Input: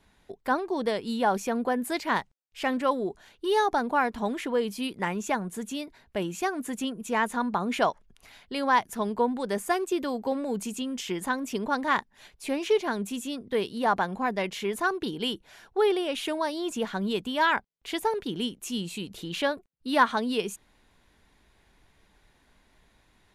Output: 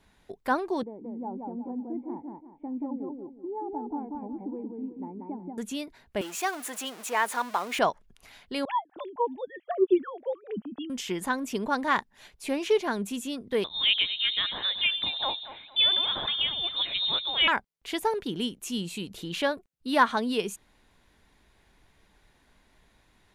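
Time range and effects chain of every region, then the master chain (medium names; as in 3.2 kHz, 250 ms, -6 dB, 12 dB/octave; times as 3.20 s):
0.83–5.58 s: cascade formant filter u + modulated delay 181 ms, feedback 32%, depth 99 cents, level -3 dB
6.21–7.79 s: jump at every zero crossing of -34.5 dBFS + high-pass 550 Hz
8.65–10.90 s: formants replaced by sine waves + phase shifter stages 4, 1.1 Hz, lowest notch 200–2700 Hz
13.64–17.48 s: echo whose repeats swap between lows and highs 114 ms, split 840 Hz, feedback 56%, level -8 dB + frequency inversion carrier 3.9 kHz
whole clip: none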